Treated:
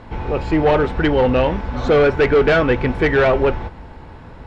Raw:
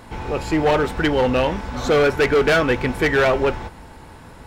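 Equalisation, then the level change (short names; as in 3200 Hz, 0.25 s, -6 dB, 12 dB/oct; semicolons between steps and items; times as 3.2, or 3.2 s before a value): LPF 3700 Hz 12 dB/oct; low shelf 140 Hz +7 dB; bell 510 Hz +2.5 dB 1.6 oct; 0.0 dB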